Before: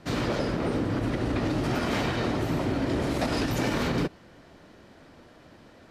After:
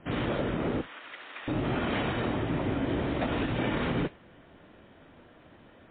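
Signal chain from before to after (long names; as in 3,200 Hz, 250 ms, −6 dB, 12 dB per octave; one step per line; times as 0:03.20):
0:00.81–0:01.48: high-pass filter 1,500 Hz 12 dB per octave
level −2 dB
MP3 16 kbit/s 8,000 Hz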